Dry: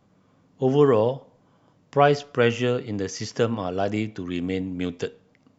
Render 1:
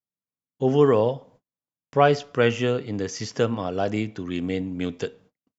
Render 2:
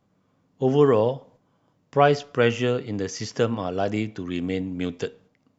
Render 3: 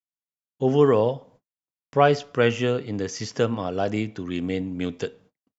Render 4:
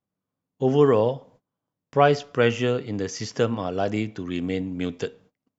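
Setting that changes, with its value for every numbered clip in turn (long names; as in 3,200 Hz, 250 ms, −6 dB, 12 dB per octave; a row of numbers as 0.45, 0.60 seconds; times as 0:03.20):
noise gate, range: −42, −6, −55, −25 decibels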